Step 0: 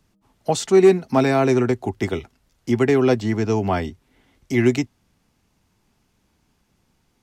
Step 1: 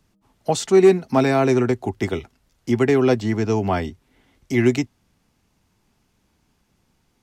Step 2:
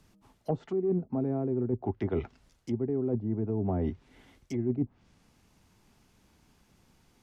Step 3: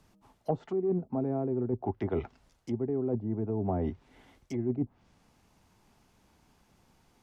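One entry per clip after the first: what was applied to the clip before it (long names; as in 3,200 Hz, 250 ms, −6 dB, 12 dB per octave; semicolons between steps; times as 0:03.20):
no processing that can be heard
treble cut that deepens with the level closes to 410 Hz, closed at −16.5 dBFS; reversed playback; downward compressor 16 to 1, threshold −27 dBFS, peak gain reduction 17 dB; reversed playback; level +1.5 dB
parametric band 800 Hz +5 dB 1.4 octaves; level −2 dB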